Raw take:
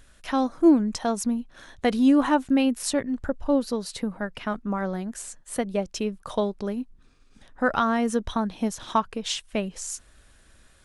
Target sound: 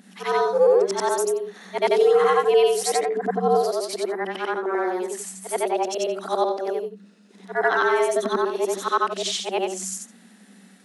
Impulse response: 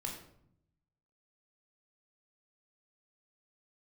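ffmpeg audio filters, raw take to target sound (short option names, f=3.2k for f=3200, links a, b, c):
-af "afftfilt=real='re':imag='-im':win_size=8192:overlap=0.75,afreqshift=180,alimiter=level_in=16.5dB:limit=-1dB:release=50:level=0:latency=1,volume=-8.5dB"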